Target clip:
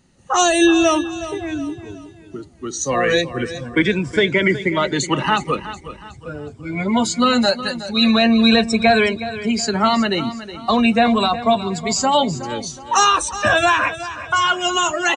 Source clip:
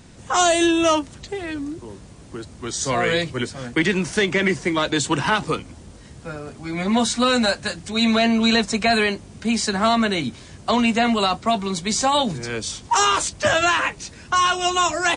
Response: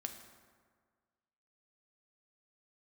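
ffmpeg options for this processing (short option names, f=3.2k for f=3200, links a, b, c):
-af "afftfilt=real='re*pow(10,8/40*sin(2*PI*(1.7*log(max(b,1)*sr/1024/100)/log(2)-(-0.4)*(pts-256)/sr)))':imag='im*pow(10,8/40*sin(2*PI*(1.7*log(max(b,1)*sr/1024/100)/log(2)-(-0.4)*(pts-256)/sr)))':win_size=1024:overlap=0.75,afftdn=nr=14:nf=-26,aecho=1:1:368|736|1104|1472:0.211|0.0845|0.0338|0.0135,volume=2dB"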